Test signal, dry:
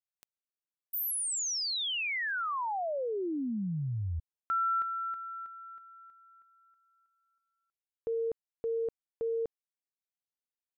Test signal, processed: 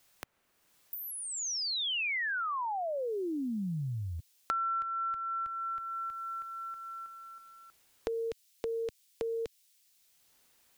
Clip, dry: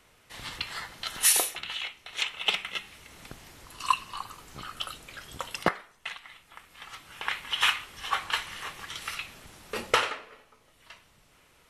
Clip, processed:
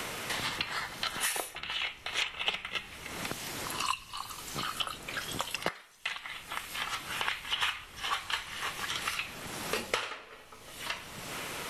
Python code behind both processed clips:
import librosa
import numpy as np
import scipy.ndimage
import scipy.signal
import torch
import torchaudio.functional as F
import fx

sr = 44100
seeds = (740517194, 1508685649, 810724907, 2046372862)

y = fx.band_squash(x, sr, depth_pct=100)
y = y * 10.0 ** (-1.5 / 20.0)